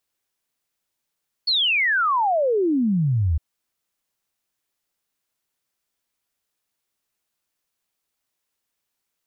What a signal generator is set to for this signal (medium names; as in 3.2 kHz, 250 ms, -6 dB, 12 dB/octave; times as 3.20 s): log sweep 4.5 kHz -> 73 Hz 1.91 s -17 dBFS